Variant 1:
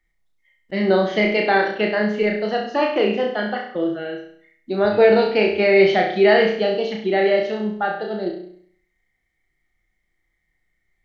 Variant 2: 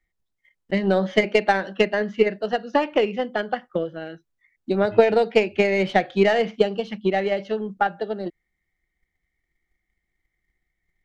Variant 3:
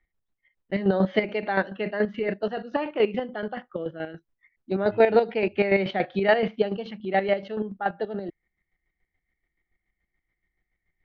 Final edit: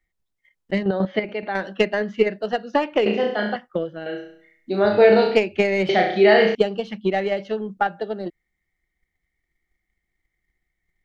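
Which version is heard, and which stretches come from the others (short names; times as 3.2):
2
0.83–1.55 from 3
3.06–3.56 from 1
4.06–5.36 from 1
5.89–6.55 from 1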